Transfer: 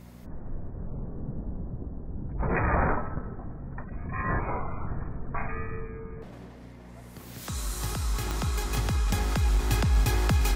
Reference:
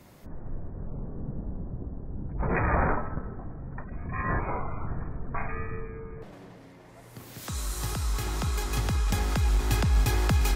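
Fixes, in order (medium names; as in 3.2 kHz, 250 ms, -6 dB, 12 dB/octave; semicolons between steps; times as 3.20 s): de-click; de-hum 60.1 Hz, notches 4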